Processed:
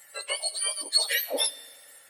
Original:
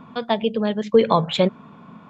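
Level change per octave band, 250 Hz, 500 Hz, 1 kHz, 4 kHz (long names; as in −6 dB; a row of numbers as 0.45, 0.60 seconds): −28.0, −18.0, −18.5, +3.5 decibels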